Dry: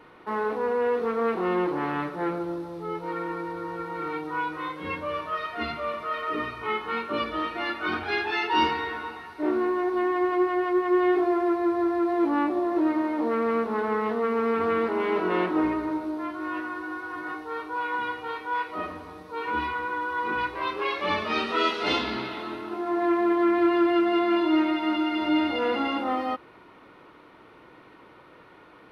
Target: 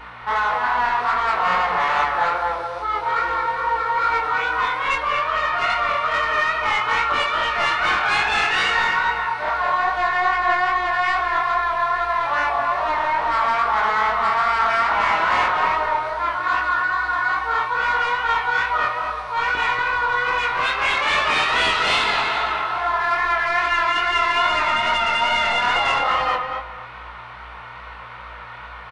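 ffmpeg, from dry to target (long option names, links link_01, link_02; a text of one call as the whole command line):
ffmpeg -i in.wav -filter_complex "[0:a]asettb=1/sr,asplit=3[link_01][link_02][link_03];[link_01]atrim=end=5.194[link_04];[link_02]atrim=start=5.19:end=5.7,asetpts=PTS-STARTPTS,afade=type=in:duration=0.004:curve=qsin,afade=type=out:start_time=0.506:duration=0.004:curve=qsin,acrossover=split=3200[link_05][link_06];[link_06]acompressor=threshold=-56dB:ratio=4:attack=1:release=60[link_07];[link_05][link_07]amix=inputs=2:normalize=0[link_08];[link_03]atrim=start=5.696[link_09];[link_04][link_08]acrossfade=duration=0.004:curve1=hsin:curve2=qsin[link_10];[link_10][link_09]acrossfade=duration=0.004:curve1=qsin:curve2=hsin,afftfilt=real='re*lt(hypot(re,im),0.282)':imag='im*lt(hypot(re,im),0.282)':win_size=1024:overlap=0.75,acrossover=split=600[link_11][link_12];[link_11]acrusher=bits=3:mix=0:aa=0.5[link_13];[link_12]asplit=2[link_14][link_15];[link_15]highpass=frequency=720:poles=1,volume=18dB,asoftclip=type=tanh:threshold=-16.5dB[link_16];[link_14][link_16]amix=inputs=2:normalize=0,lowpass=frequency=2900:poles=1,volume=-6dB[link_17];[link_13][link_17]amix=inputs=2:normalize=0,aeval=exprs='val(0)+0.00251*(sin(2*PI*60*n/s)+sin(2*PI*2*60*n/s)/2+sin(2*PI*3*60*n/s)/3+sin(2*PI*4*60*n/s)/4+sin(2*PI*5*60*n/s)/5)':channel_layout=same,asplit=2[link_18][link_19];[link_19]adelay=235,lowpass=frequency=1700:poles=1,volume=-3.5dB,asplit=2[link_20][link_21];[link_21]adelay=235,lowpass=frequency=1700:poles=1,volume=0.28,asplit=2[link_22][link_23];[link_23]adelay=235,lowpass=frequency=1700:poles=1,volume=0.28,asplit=2[link_24][link_25];[link_25]adelay=235,lowpass=frequency=1700:poles=1,volume=0.28[link_26];[link_20][link_22][link_24][link_26]amix=inputs=4:normalize=0[link_27];[link_18][link_27]amix=inputs=2:normalize=0,flanger=delay=19.5:depth=5.6:speed=2.4,aresample=22050,aresample=44100,volume=8.5dB" out.wav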